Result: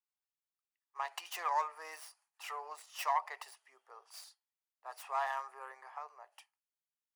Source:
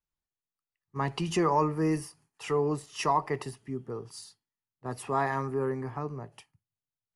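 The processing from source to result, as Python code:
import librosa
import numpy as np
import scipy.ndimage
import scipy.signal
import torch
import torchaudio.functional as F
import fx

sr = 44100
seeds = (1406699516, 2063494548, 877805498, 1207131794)

y = fx.tracing_dist(x, sr, depth_ms=0.14)
y = scipy.signal.sosfilt(scipy.signal.butter(6, 660.0, 'highpass', fs=sr, output='sos'), y)
y = y * 10.0 ** (-5.5 / 20.0)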